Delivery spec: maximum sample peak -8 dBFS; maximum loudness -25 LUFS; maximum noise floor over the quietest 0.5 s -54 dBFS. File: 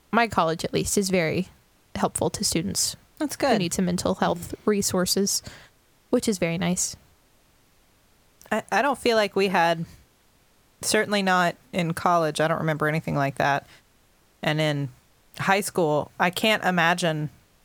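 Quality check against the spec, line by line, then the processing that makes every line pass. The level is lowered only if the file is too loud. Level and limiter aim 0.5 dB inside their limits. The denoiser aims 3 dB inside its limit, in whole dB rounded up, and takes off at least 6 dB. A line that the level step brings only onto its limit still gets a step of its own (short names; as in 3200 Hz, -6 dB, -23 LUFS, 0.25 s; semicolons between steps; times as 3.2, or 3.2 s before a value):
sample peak -4.5 dBFS: fail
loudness -24.0 LUFS: fail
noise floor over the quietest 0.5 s -61 dBFS: OK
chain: gain -1.5 dB; limiter -8.5 dBFS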